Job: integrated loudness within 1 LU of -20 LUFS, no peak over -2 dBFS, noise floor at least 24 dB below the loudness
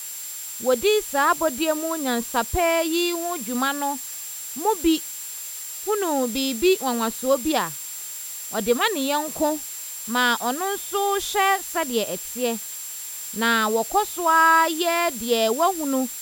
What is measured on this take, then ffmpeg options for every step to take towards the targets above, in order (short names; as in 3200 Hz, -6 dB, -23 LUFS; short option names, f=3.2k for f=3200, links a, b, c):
steady tone 7400 Hz; tone level -35 dBFS; noise floor -34 dBFS; noise floor target -47 dBFS; loudness -23.0 LUFS; peak -6.0 dBFS; loudness target -20.0 LUFS
-> -af "bandreject=f=7.4k:w=30"
-af "afftdn=nr=13:nf=-34"
-af "volume=3dB"